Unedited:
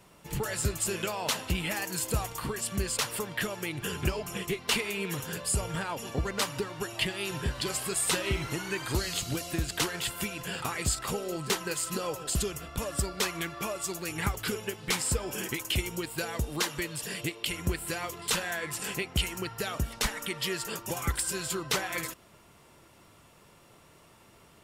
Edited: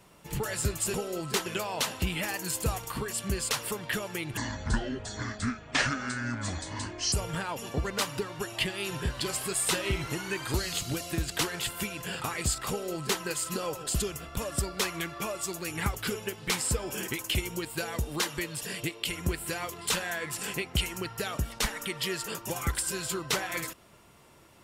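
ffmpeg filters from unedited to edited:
-filter_complex "[0:a]asplit=5[s0][s1][s2][s3][s4];[s0]atrim=end=0.942[s5];[s1]atrim=start=11.098:end=11.622[s6];[s2]atrim=start=0.938:end=3.854[s7];[s3]atrim=start=3.85:end=5.53,asetpts=PTS-STARTPTS,asetrate=26901,aresample=44100[s8];[s4]atrim=start=5.526[s9];[s5][s6]acrossfade=d=0.004:c1=hsin:c2=hsin[s10];[s10][s7]acrossfade=d=0.004:c1=hsin:c2=hsin[s11];[s11][s8]acrossfade=d=0.004:c1=hsin:c2=hsin[s12];[s12][s9]acrossfade=d=0.004:c1=hsin:c2=hsin"

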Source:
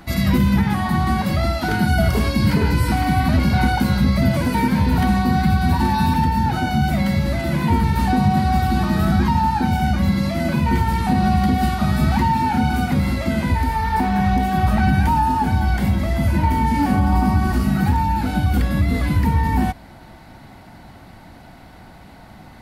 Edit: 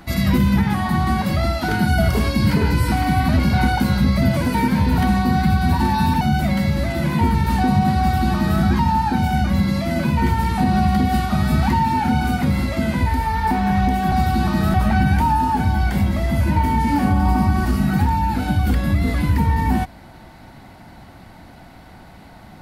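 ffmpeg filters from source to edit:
-filter_complex "[0:a]asplit=4[s0][s1][s2][s3];[s0]atrim=end=6.212[s4];[s1]atrim=start=6.698:end=14.612[s5];[s2]atrim=start=8.478:end=9.102[s6];[s3]atrim=start=14.608[s7];[s4][s5]acrossfade=d=0.004:c1=hsin:c2=hsin[s8];[s8][s6]acrossfade=d=0.004:c1=hsin:c2=hsin[s9];[s9][s7]acrossfade=d=0.004:c1=hsin:c2=hsin"

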